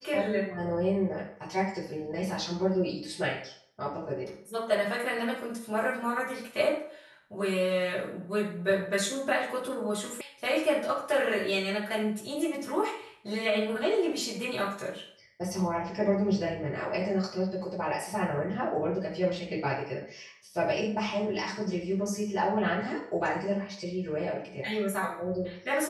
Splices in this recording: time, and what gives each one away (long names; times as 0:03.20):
0:10.21: cut off before it has died away